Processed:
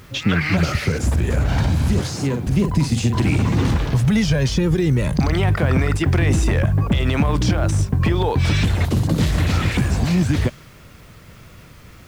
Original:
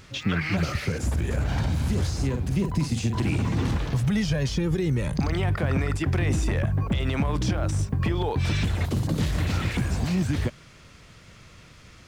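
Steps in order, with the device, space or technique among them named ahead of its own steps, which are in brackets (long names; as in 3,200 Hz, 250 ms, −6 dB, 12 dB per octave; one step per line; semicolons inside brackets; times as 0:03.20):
0:01.99–0:02.47: high-pass filter 120 Hz 24 dB per octave
plain cassette with noise reduction switched in (one half of a high-frequency compander decoder only; tape wow and flutter; white noise bed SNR 39 dB)
level +7 dB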